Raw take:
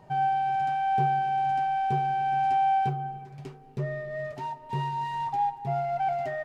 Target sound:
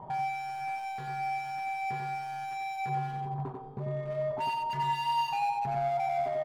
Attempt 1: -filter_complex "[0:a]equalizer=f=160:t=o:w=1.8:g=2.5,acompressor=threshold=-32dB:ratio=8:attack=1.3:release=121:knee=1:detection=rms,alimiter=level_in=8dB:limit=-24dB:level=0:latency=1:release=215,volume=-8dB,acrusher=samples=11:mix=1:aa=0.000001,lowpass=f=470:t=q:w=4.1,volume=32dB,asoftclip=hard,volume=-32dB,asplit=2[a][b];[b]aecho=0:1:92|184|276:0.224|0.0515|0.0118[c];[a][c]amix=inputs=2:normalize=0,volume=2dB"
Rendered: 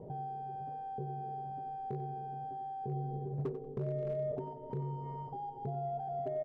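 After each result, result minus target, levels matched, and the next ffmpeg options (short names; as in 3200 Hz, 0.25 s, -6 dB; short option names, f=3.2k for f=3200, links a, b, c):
compressor: peak gain reduction +14 dB; echo-to-direct -9 dB; 500 Hz band +3.5 dB
-filter_complex "[0:a]equalizer=f=160:t=o:w=1.8:g=2.5,alimiter=level_in=8dB:limit=-24dB:level=0:latency=1:release=215,volume=-8dB,acrusher=samples=11:mix=1:aa=0.000001,lowpass=f=470:t=q:w=4.1,volume=32dB,asoftclip=hard,volume=-32dB,asplit=2[a][b];[b]aecho=0:1:92|184|276:0.224|0.0515|0.0118[c];[a][c]amix=inputs=2:normalize=0,volume=2dB"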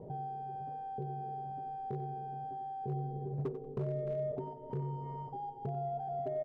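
echo-to-direct -9 dB; 500 Hz band +3.5 dB
-filter_complex "[0:a]equalizer=f=160:t=o:w=1.8:g=2.5,alimiter=level_in=8dB:limit=-24dB:level=0:latency=1:release=215,volume=-8dB,acrusher=samples=11:mix=1:aa=0.000001,lowpass=f=470:t=q:w=4.1,volume=32dB,asoftclip=hard,volume=-32dB,asplit=2[a][b];[b]aecho=0:1:92|184|276:0.631|0.145|0.0334[c];[a][c]amix=inputs=2:normalize=0,volume=2dB"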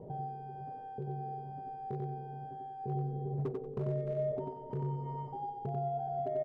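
500 Hz band +4.0 dB
-filter_complex "[0:a]equalizer=f=160:t=o:w=1.8:g=2.5,alimiter=level_in=8dB:limit=-24dB:level=0:latency=1:release=215,volume=-8dB,acrusher=samples=11:mix=1:aa=0.000001,lowpass=f=1k:t=q:w=4.1,volume=32dB,asoftclip=hard,volume=-32dB,asplit=2[a][b];[b]aecho=0:1:92|184|276:0.631|0.145|0.0334[c];[a][c]amix=inputs=2:normalize=0,volume=2dB"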